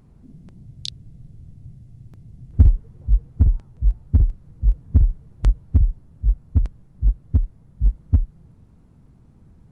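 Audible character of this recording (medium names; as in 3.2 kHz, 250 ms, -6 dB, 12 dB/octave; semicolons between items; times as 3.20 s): noise floor -52 dBFS; spectral tilt -8.0 dB/octave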